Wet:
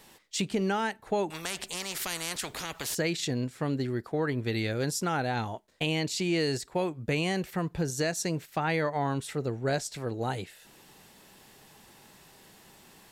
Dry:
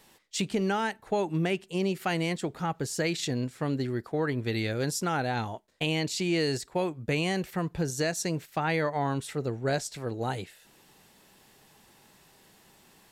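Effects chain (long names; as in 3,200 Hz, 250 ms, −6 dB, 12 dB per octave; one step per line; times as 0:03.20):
in parallel at −2 dB: downward compressor, threshold −43 dBFS, peak gain reduction 18 dB
0:01.30–0:02.95: on the sum: every bin compressed towards the loudest bin 4 to 1
level −1.5 dB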